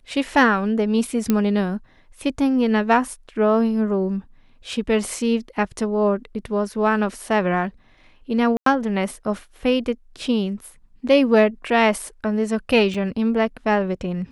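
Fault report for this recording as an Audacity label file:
1.300000	1.300000	pop -6 dBFS
8.570000	8.660000	dropout 93 ms
12.940000	12.940000	dropout 4.5 ms

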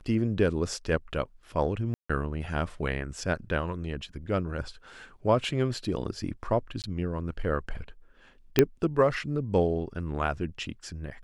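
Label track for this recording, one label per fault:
1.940000	2.100000	dropout 155 ms
6.820000	6.840000	dropout 18 ms
8.590000	8.590000	pop -5 dBFS

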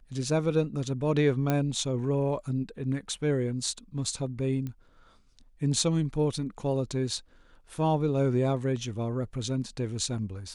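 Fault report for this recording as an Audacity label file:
1.500000	1.500000	pop -13 dBFS
4.670000	4.670000	pop -24 dBFS

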